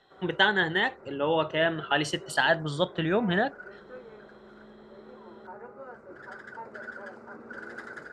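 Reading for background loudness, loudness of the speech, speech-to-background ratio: −45.5 LKFS, −26.5 LKFS, 19.0 dB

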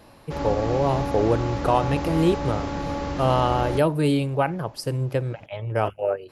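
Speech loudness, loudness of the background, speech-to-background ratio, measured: −24.0 LKFS, −29.0 LKFS, 5.0 dB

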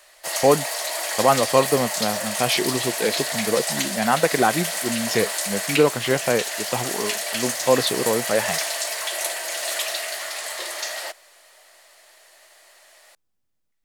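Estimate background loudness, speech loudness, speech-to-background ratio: −25.0 LKFS, −23.0 LKFS, 2.0 dB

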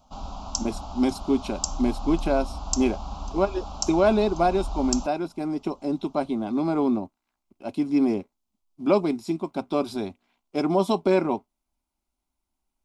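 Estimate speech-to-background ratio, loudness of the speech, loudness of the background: 8.5 dB, −25.5 LKFS, −34.0 LKFS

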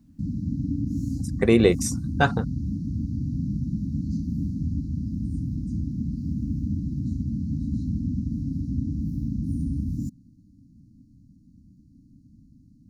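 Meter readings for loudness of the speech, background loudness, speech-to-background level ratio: −22.5 LKFS, −29.5 LKFS, 7.0 dB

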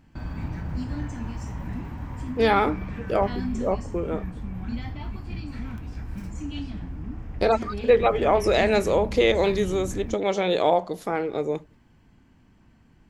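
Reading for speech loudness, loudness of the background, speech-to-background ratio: −23.5 LKFS, −34.0 LKFS, 10.5 dB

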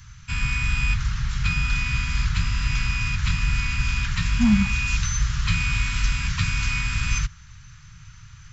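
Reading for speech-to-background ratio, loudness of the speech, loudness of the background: 2.0 dB, −22.5 LKFS, −24.5 LKFS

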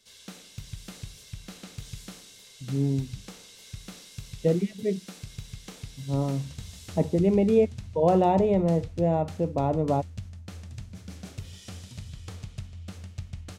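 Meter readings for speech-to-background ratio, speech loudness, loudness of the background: 17.0 dB, −25.5 LKFS, −42.5 LKFS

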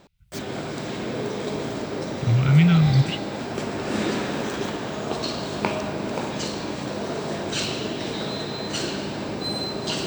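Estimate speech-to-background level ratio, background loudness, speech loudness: 9.5 dB, −28.5 LKFS, −19.0 LKFS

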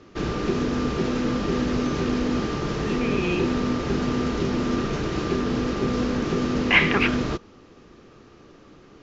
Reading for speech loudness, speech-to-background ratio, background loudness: −23.0 LKFS, 2.0 dB, −25.0 LKFS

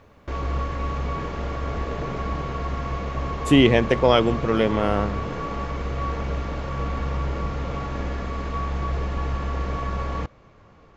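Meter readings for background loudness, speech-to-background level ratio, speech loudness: −29.0 LKFS, 9.0 dB, −20.0 LKFS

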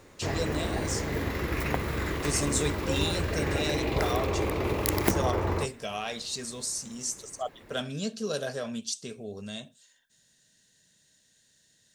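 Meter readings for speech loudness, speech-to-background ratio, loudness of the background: −34.0 LKFS, −4.0 dB, −30.0 LKFS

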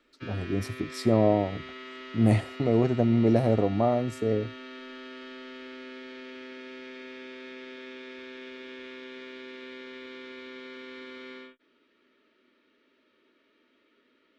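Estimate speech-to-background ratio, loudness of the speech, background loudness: 17.0 dB, −25.5 LKFS, −42.5 LKFS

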